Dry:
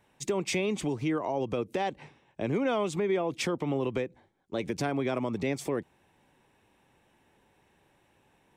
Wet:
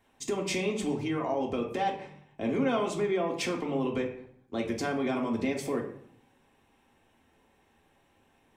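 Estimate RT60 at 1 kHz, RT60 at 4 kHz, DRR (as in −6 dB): 0.60 s, 0.45 s, −0.5 dB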